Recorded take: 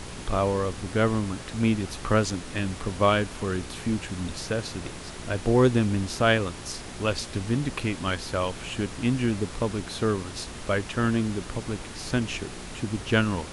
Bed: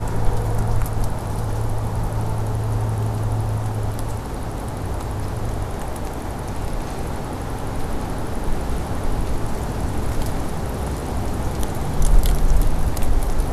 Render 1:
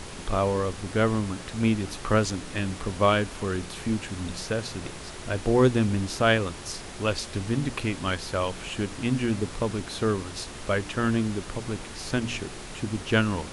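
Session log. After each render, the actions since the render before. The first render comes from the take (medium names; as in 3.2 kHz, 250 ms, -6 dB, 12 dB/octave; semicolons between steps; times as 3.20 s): de-hum 60 Hz, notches 5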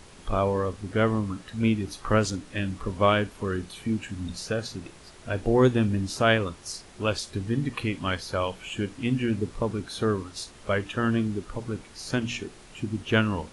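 noise print and reduce 10 dB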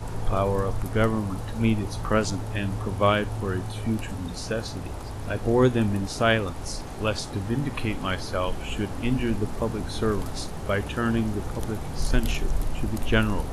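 add bed -9.5 dB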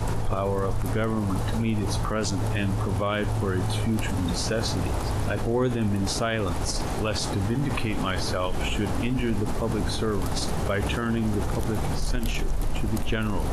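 in parallel at -2 dB: compressor with a negative ratio -33 dBFS; on the sum: peak limiter -16.5 dBFS, peak gain reduction 10.5 dB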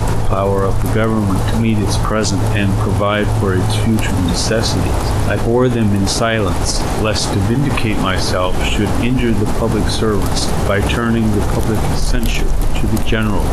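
trim +11 dB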